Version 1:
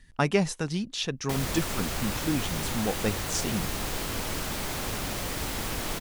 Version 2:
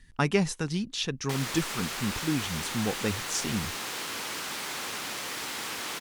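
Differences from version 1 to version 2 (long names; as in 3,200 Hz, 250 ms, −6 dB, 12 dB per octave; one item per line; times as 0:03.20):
background: add meter weighting curve A
master: add parametric band 630 Hz −5.5 dB 0.61 octaves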